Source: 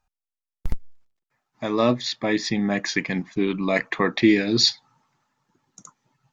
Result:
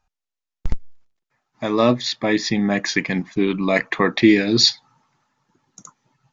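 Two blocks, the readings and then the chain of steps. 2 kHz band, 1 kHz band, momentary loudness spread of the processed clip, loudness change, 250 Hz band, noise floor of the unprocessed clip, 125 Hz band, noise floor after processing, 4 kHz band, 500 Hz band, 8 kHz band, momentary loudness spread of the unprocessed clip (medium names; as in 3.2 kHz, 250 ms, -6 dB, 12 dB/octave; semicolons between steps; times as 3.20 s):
+3.5 dB, +3.5 dB, 18 LU, +3.5 dB, +3.5 dB, under -85 dBFS, +3.5 dB, -85 dBFS, +3.5 dB, +3.5 dB, no reading, 18 LU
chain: resampled via 16 kHz; trim +3.5 dB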